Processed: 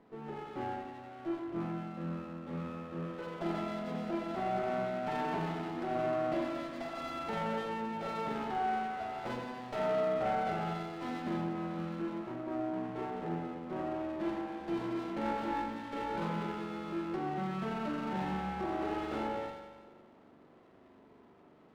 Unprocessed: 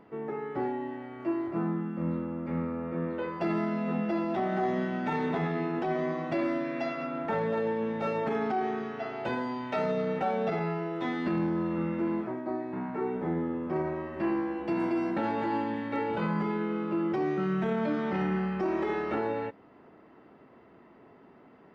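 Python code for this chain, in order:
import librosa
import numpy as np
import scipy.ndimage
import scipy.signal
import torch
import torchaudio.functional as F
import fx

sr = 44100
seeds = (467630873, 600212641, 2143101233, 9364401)

y = fx.rev_spring(x, sr, rt60_s=1.4, pass_ms=(41,), chirp_ms=45, drr_db=-0.5)
y = fx.running_max(y, sr, window=9)
y = F.gain(torch.from_numpy(y), -7.5).numpy()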